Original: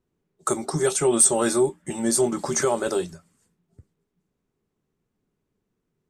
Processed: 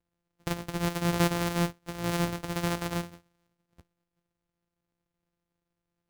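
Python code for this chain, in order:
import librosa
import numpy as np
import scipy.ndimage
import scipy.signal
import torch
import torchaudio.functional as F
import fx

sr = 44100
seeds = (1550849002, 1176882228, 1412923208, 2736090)

y = np.r_[np.sort(x[:len(x) // 256 * 256].reshape(-1, 256), axis=1).ravel(), x[len(x) // 256 * 256:]]
y = F.gain(torch.from_numpy(y), -7.5).numpy()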